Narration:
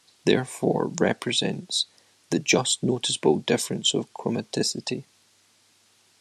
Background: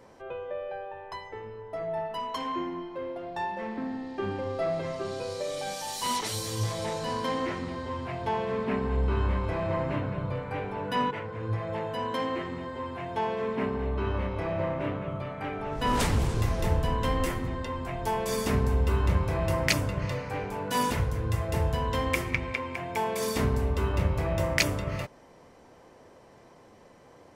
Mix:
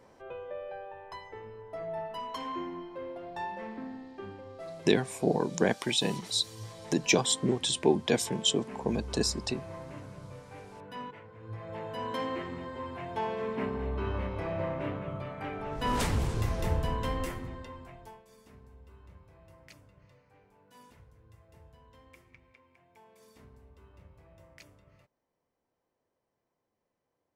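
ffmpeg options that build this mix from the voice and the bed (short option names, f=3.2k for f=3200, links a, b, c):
-filter_complex "[0:a]adelay=4600,volume=-4dB[a];[1:a]volume=6dB,afade=t=out:st=3.51:d=0.92:silence=0.334965,afade=t=in:st=11.42:d=0.69:silence=0.298538,afade=t=out:st=16.85:d=1.38:silence=0.0501187[b];[a][b]amix=inputs=2:normalize=0"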